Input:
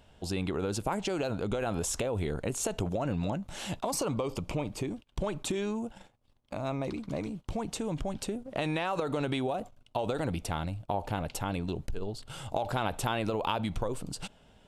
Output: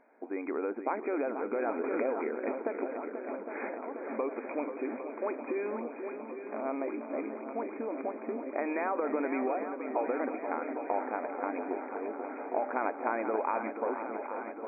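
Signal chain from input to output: 2.90–4.12 s: compressor with a negative ratio -36 dBFS, ratio -0.5; brick-wall FIR band-pass 230–2500 Hz; shuffle delay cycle 809 ms, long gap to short 1.5:1, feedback 72%, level -9 dB; 1.81–2.25 s: swell ahead of each attack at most 25 dB/s

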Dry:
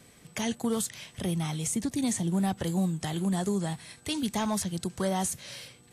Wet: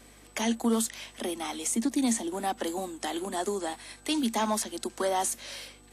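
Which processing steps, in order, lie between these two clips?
rippled Chebyshev high-pass 220 Hz, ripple 3 dB; hum 50 Hz, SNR 28 dB; trim +4.5 dB

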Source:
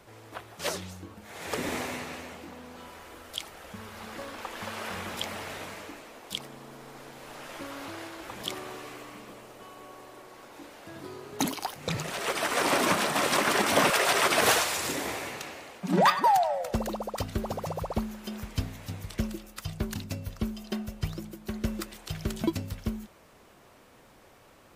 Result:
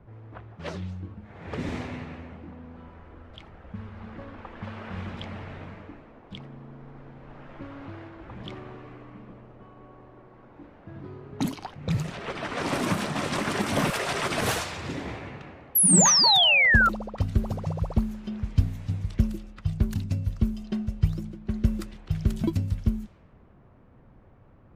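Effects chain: in parallel at -10 dB: overload inside the chain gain 17.5 dB; on the sum: tone controls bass +15 dB, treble -1 dB; level-controlled noise filter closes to 1.4 kHz, open at -15 dBFS; painted sound fall, 15.75–16.89 s, 1.3–12 kHz -12 dBFS; trim -7 dB

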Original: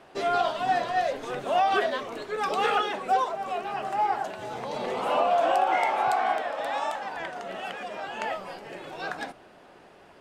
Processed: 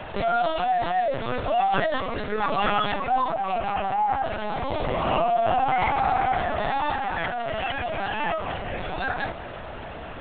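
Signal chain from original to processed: bass shelf 210 Hz -7.5 dB; LPC vocoder at 8 kHz pitch kept; level flattener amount 50%

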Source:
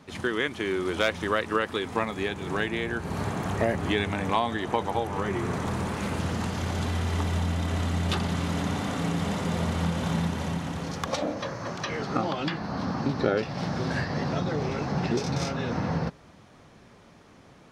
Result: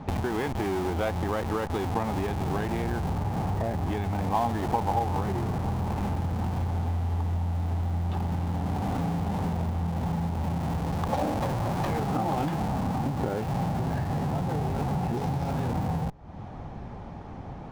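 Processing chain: RIAA curve playback; in parallel at -6.5 dB: Schmitt trigger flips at -30.5 dBFS; on the sum: compression, threshold -33 dBFS, peak gain reduction 21 dB; peaking EQ 810 Hz +12.5 dB 0.52 oct; trim +4.5 dB

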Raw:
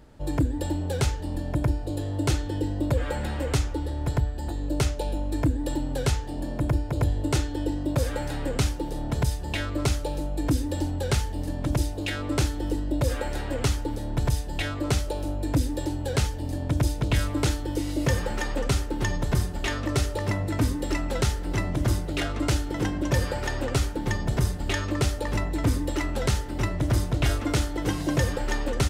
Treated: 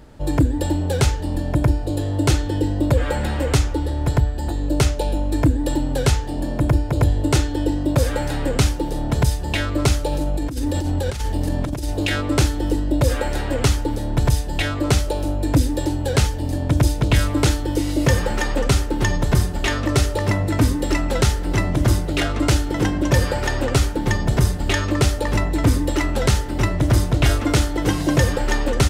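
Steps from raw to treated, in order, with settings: 10.12–12.21 s: compressor with a negative ratio -29 dBFS, ratio -1; trim +7 dB

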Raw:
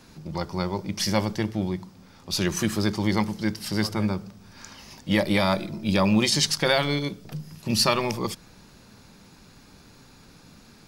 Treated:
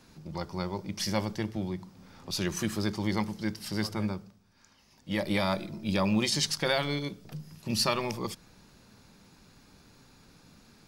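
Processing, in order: 1.56–2.31 s: three bands compressed up and down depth 40%; 4.06–5.30 s: dip -11.5 dB, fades 0.38 s; trim -6 dB

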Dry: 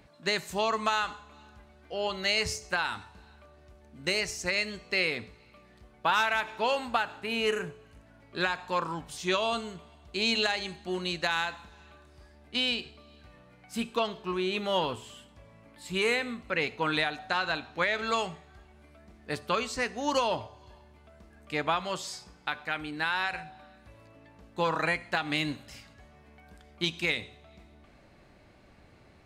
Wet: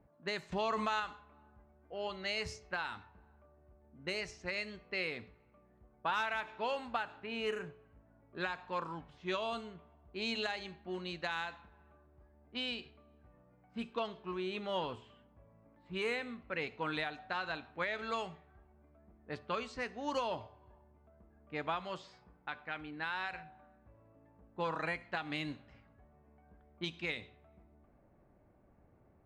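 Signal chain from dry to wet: level-controlled noise filter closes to 990 Hz, open at -25 dBFS; treble shelf 5.4 kHz -10.5 dB; 0.52–1.00 s: level flattener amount 70%; trim -8 dB

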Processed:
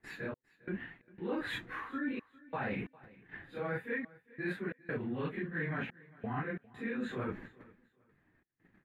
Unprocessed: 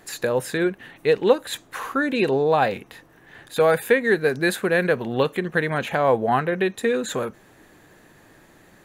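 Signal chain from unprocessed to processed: phase randomisation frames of 100 ms; gate -48 dBFS, range -23 dB; FFT filter 280 Hz 0 dB, 570 Hz -11 dB, 2 kHz -1 dB, 6.6 kHz -27 dB; reverse; compression 6:1, threshold -41 dBFS, peak gain reduction 21.5 dB; reverse; trance gate "xx..xx.xxxx" 89 bpm -60 dB; on a send: feedback delay 403 ms, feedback 25%, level -22 dB; on the sum: trim +5.5 dB

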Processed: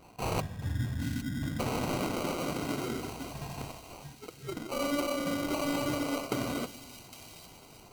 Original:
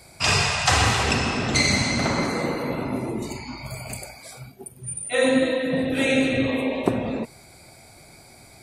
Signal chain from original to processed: time-frequency box 0.44–1.74 s, 300–9800 Hz -26 dB; reverse; compression, threshold -22 dBFS, peak gain reduction 9 dB; reverse; wow and flutter 25 cents; sample-rate reducer 1.6 kHz, jitter 0%; feedback echo behind a high-pass 881 ms, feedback 45%, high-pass 3.2 kHz, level -6.5 dB; on a send at -16 dB: reverberation RT60 1.3 s, pre-delay 3 ms; on the sum: speed mistake 44.1 kHz file played as 48 kHz; trim -6 dB

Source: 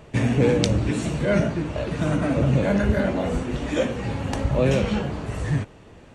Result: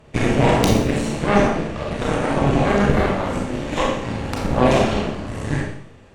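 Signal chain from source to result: Chebyshev shaper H 6 -6 dB, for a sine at -2 dBFS; Schroeder reverb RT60 0.64 s, combs from 28 ms, DRR -1.5 dB; trim -4 dB

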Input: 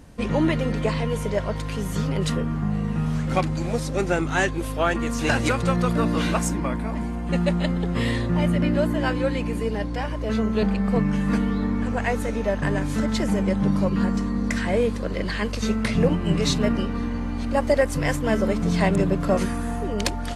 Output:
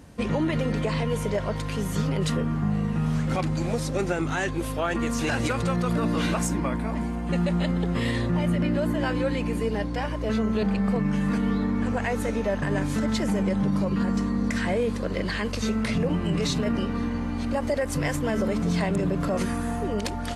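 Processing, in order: high-pass 55 Hz; peak limiter -16.5 dBFS, peak gain reduction 9 dB

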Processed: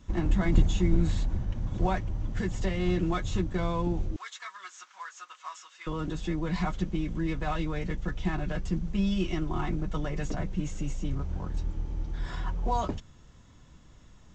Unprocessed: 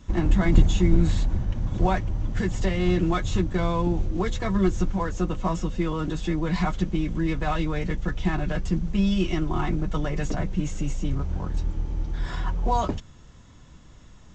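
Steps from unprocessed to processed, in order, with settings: 4.16–5.87 s: Chebyshev high-pass 1.2 kHz, order 3; trim -5 dB

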